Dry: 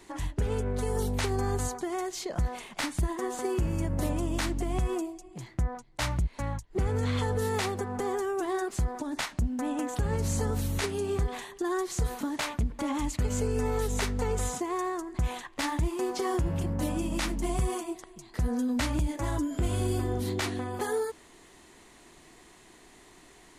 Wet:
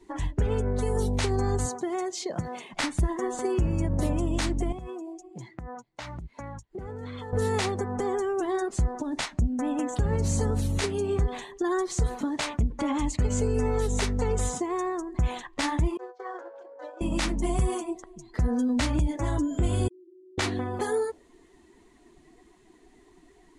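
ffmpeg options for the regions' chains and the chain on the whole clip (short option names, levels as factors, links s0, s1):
-filter_complex "[0:a]asettb=1/sr,asplit=3[s0][s1][s2];[s0]atrim=end=1.664[s3];[s1]atrim=start=1.66:end=2.73,asetpts=PTS-STARTPTS,afade=t=in:d=0.004:c=qsin,afade=t=out:st=1.066:d=0.004:c=qsin,highpass=f=110:w=0.5412,highpass=f=110:w=1.3066,acrusher=bits=8:mode=log:mix=0:aa=0.000001[s4];[s2]atrim=start=2.726[s5];[s3][s4]acrossfade=d=0.004:c1=hsin:c2=qsin[s6];[s6][s5]acrossfade=d=0.004:c1=qsin:c2=hsin,asettb=1/sr,asplit=3[s7][s8][s9];[s7]atrim=end=4.724[s10];[s8]atrim=start=4.72:end=7.33,asetpts=PTS-STARTPTS,afade=t=in:d=0.004:c=qsin,afade=t=out:st=2.606:d=0.004:c=qsin,highpass=f=150:p=1,acompressor=threshold=0.0141:ratio=8:attack=3.2:release=140:knee=1:detection=peak[s11];[s9]atrim=start=7.326[s12];[s10][s11]acrossfade=d=0.004:c1=hsin:c2=qsin[s13];[s13][s12]acrossfade=d=0.004:c1=qsin:c2=hsin,asettb=1/sr,asplit=3[s14][s15][s16];[s14]atrim=end=15.974[s17];[s15]atrim=start=15.97:end=17.01,asetpts=PTS-STARTPTS,afade=t=in:d=0.004:c=qsin,afade=t=out:st=1.036:d=0.004:c=qsin,agate=range=0.0224:threshold=0.0708:ratio=3:release=100:detection=peak,highpass=f=490:w=0.5412,highpass=f=490:w=1.3066,equalizer=f=500:t=q:w=4:g=7,equalizer=f=1500:t=q:w=4:g=7,equalizer=f=2800:t=q:w=4:g=-8,equalizer=f=5100:t=q:w=4:g=-4,lowpass=f=5900:w=0.5412,lowpass=f=5900:w=1.3066[s18];[s16]atrim=start=17.006[s19];[s17][s18]acrossfade=d=0.004:c1=hsin:c2=qsin[s20];[s20][s19]acrossfade=d=0.004:c1=qsin:c2=hsin,asettb=1/sr,asplit=3[s21][s22][s23];[s21]atrim=end=19.884[s24];[s22]atrim=start=19.88:end=20.38,asetpts=PTS-STARTPTS,afade=t=in:d=0.004:c=qsin,afade=t=out:st=0.496:d=0.004:c=qsin,asoftclip=type=hard:threshold=0.0168,asuperpass=centerf=340:order=20:qfactor=5.2,acompressor=threshold=0.002:ratio=6:attack=3.2:release=140:knee=1:detection=peak[s25];[s23]atrim=start=20.376[s26];[s24][s25]acrossfade=d=0.004:c1=hsin:c2=qsin[s27];[s27][s26]acrossfade=d=0.004:c1=qsin:c2=hsin,lowpass=11000,afftdn=nr=14:nf=-49,adynamicequalizer=threshold=0.00447:dfrequency=1400:dqfactor=0.75:tfrequency=1400:tqfactor=0.75:attack=5:release=100:ratio=0.375:range=2:mode=cutabove:tftype=bell,volume=1.5"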